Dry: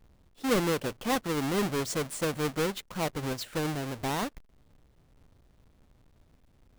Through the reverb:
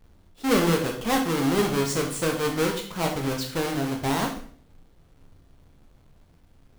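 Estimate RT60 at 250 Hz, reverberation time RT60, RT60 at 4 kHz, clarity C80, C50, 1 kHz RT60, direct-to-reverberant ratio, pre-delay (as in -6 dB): 0.60 s, 0.50 s, 0.50 s, 12.0 dB, 7.5 dB, 0.50 s, 2.0 dB, 14 ms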